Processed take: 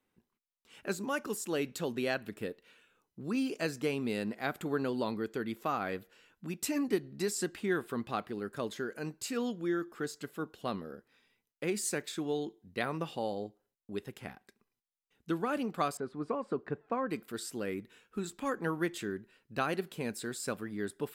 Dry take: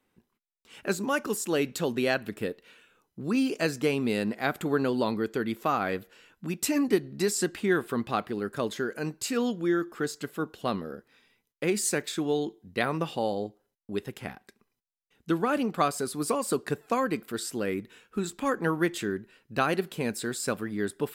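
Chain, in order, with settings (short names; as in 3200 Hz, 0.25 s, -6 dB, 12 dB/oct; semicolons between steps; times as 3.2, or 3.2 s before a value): 15.97–17.1 LPF 1700 Hz 12 dB/oct; gain -6.5 dB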